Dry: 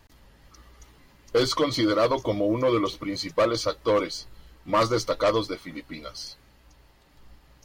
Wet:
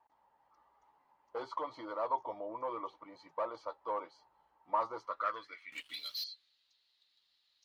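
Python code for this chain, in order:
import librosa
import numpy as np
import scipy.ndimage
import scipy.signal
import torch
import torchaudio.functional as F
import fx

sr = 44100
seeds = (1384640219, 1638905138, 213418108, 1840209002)

y = fx.filter_sweep_bandpass(x, sr, from_hz=880.0, to_hz=3900.0, start_s=4.96, end_s=6.03, q=6.8)
y = fx.leveller(y, sr, passes=3, at=(5.72, 6.24))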